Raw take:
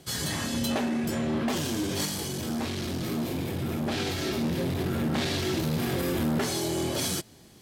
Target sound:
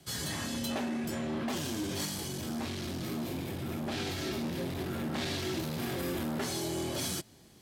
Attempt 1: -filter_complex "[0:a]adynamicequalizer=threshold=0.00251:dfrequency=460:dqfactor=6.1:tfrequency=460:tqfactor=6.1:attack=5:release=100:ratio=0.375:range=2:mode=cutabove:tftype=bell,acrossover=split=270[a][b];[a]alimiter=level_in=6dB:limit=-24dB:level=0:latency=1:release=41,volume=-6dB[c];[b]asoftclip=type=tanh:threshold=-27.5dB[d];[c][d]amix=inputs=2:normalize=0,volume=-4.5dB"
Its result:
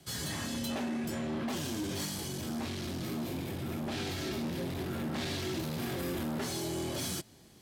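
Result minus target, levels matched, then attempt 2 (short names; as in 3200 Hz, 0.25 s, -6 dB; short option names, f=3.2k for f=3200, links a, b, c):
soft clip: distortion +9 dB
-filter_complex "[0:a]adynamicequalizer=threshold=0.00251:dfrequency=460:dqfactor=6.1:tfrequency=460:tqfactor=6.1:attack=5:release=100:ratio=0.375:range=2:mode=cutabove:tftype=bell,acrossover=split=270[a][b];[a]alimiter=level_in=6dB:limit=-24dB:level=0:latency=1:release=41,volume=-6dB[c];[b]asoftclip=type=tanh:threshold=-21dB[d];[c][d]amix=inputs=2:normalize=0,volume=-4.5dB"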